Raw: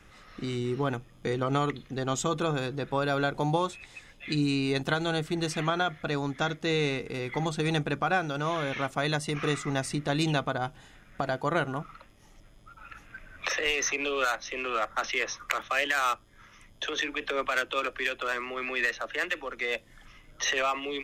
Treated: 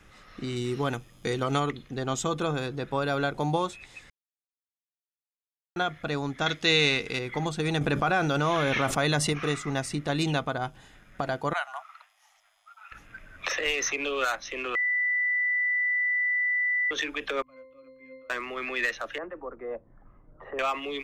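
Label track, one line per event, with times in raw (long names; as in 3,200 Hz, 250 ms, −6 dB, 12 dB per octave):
0.560000	1.600000	high-shelf EQ 3,000 Hz +9 dB
4.100000	5.760000	silence
6.460000	7.190000	parametric band 3,700 Hz +11 dB 2.7 octaves
7.810000	9.330000	envelope flattener amount 70%
11.530000	12.920000	elliptic high-pass filter 700 Hz
14.750000	16.910000	beep over 1,980 Hz −23 dBFS
17.420000	18.300000	resonances in every octave C, decay 0.71 s
19.180000	20.590000	low-pass filter 1,100 Hz 24 dB per octave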